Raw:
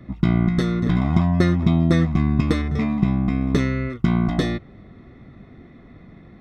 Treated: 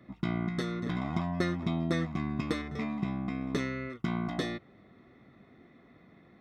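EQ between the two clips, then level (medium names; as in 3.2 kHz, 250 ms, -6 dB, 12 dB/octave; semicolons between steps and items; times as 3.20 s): high-pass 330 Hz 6 dB/octave; -7.5 dB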